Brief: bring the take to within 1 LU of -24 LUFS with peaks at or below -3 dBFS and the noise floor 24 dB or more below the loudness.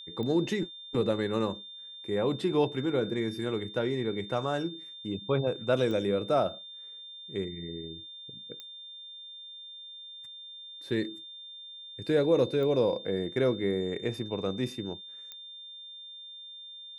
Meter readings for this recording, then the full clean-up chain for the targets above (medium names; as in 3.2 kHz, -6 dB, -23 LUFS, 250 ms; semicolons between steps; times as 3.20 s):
clicks found 5; steady tone 3.6 kHz; tone level -43 dBFS; loudness -30.5 LUFS; peak level -13.5 dBFS; loudness target -24.0 LUFS
-> de-click; band-stop 3.6 kHz, Q 30; trim +6.5 dB